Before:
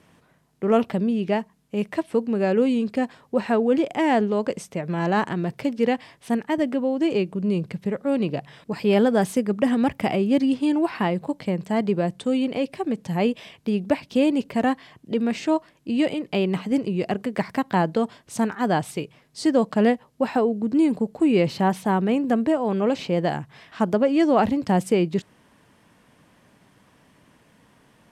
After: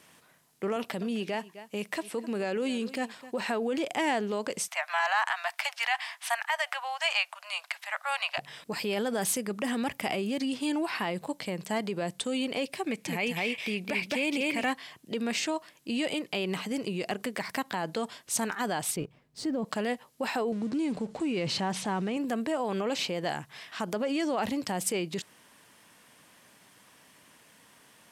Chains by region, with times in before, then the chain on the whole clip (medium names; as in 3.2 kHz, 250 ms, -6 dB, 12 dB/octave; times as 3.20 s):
0.76–3.41 s: high-pass 120 Hz + delay 257 ms -20 dB
4.68–8.38 s: steep high-pass 660 Hz 72 dB/octave + peaking EQ 1.5 kHz +8.5 dB 2.5 oct
12.86–14.71 s: peaking EQ 2.3 kHz +12.5 dB 0.41 oct + delay 214 ms -3.5 dB
18.96–19.65 s: companding laws mixed up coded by A + tilt EQ -4.5 dB/octave
20.52–22.17 s: companding laws mixed up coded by mu + Bessel low-pass 6.6 kHz, order 8 + bass shelf 230 Hz +7.5 dB
whole clip: peak limiter -18.5 dBFS; tilt EQ +3 dB/octave; trim -1 dB